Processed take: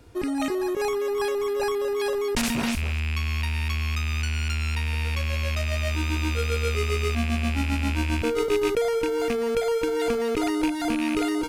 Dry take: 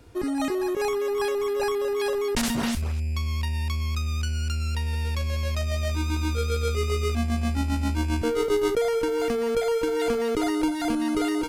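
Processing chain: rattle on loud lows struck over -30 dBFS, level -20 dBFS

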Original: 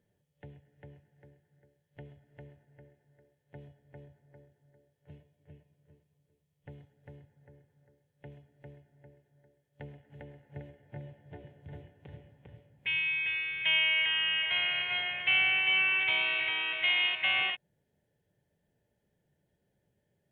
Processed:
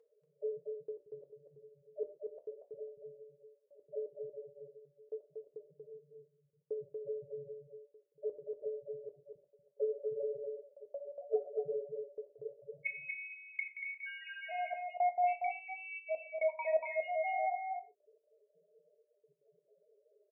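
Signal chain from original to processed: cabinet simulation 220–2600 Hz, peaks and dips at 440 Hz +8 dB, 630 Hz +10 dB, 1.5 kHz +3 dB; compression 8:1, threshold -35 dBFS, peak gain reduction 11 dB; dynamic bell 770 Hz, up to +8 dB, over -59 dBFS, Q 0.84; loudest bins only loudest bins 2; comb of notches 290 Hz; trance gate "xxxxxxx...x.xx.x" 170 bpm -60 dB; low-pass that closes with the level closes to 870 Hz, closed at -43 dBFS; delay 236 ms -4.5 dB; gated-style reverb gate 160 ms falling, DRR 7 dB; trim +12.5 dB

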